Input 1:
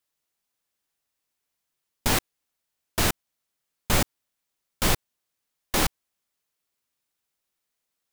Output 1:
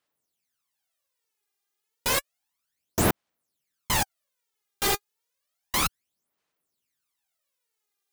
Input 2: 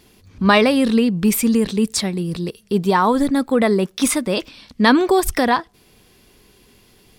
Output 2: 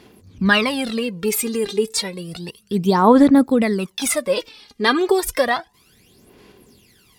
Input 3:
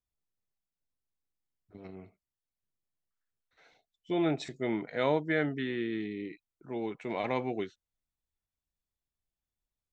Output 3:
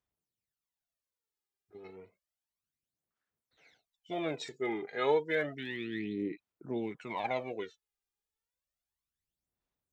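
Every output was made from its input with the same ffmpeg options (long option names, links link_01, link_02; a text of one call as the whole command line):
ffmpeg -i in.wav -af "highpass=frequency=170:poles=1,aphaser=in_gain=1:out_gain=1:delay=2.5:decay=0.73:speed=0.31:type=sinusoidal,volume=-3.5dB" out.wav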